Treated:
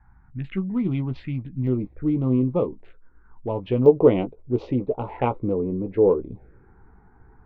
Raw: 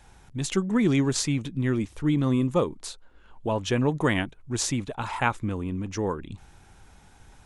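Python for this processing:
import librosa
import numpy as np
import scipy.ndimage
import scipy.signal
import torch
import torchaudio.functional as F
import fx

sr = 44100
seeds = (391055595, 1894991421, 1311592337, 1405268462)

y = fx.wiener(x, sr, points=15)
y = scipy.signal.sosfilt(scipy.signal.butter(4, 2500.0, 'lowpass', fs=sr, output='sos'), y)
y = fx.peak_eq(y, sr, hz=460.0, db=fx.steps((0.0, -10.0), (1.67, 3.0), (3.86, 14.5)), octaves=1.0)
y = fx.env_phaser(y, sr, low_hz=520.0, high_hz=1700.0, full_db=-23.0)
y = fx.doubler(y, sr, ms=16.0, db=-8)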